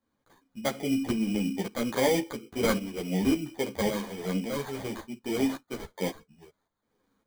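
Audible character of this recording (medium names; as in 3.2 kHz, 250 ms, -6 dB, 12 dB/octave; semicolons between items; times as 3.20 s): tremolo saw up 1.8 Hz, depth 65%; aliases and images of a low sample rate 2.7 kHz, jitter 0%; a shimmering, thickened sound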